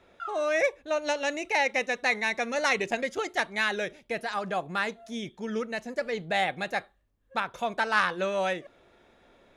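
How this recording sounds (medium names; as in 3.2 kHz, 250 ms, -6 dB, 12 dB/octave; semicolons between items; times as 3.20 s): noise floor -64 dBFS; spectral tilt -3.0 dB/octave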